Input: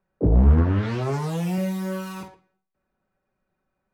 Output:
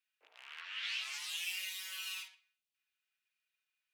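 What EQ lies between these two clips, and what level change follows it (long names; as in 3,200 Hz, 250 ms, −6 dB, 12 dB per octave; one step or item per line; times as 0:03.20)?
four-pole ladder high-pass 2,400 Hz, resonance 50%
+9.0 dB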